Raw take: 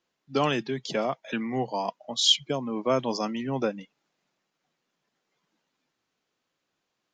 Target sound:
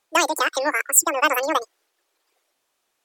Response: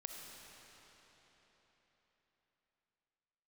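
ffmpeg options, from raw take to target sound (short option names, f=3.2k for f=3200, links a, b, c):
-af "asetrate=103194,aresample=44100,volume=7dB"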